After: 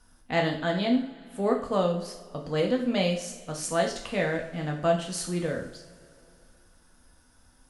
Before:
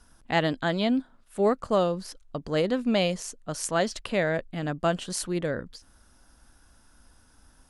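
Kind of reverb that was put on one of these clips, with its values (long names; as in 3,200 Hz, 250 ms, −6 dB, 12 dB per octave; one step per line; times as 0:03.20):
coupled-rooms reverb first 0.48 s, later 3.1 s, from −21 dB, DRR 0.5 dB
level −4 dB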